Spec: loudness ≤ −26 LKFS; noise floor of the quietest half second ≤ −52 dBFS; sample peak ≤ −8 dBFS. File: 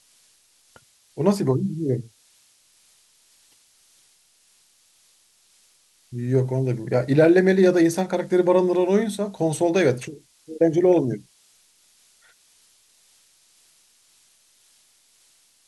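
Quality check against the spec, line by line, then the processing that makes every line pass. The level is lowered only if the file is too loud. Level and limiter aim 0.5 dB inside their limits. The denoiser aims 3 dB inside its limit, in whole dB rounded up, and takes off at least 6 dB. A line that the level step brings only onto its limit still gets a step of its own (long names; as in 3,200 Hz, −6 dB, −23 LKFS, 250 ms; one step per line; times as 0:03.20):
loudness −21.0 LKFS: out of spec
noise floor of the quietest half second −60 dBFS: in spec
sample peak −5.5 dBFS: out of spec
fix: level −5.5 dB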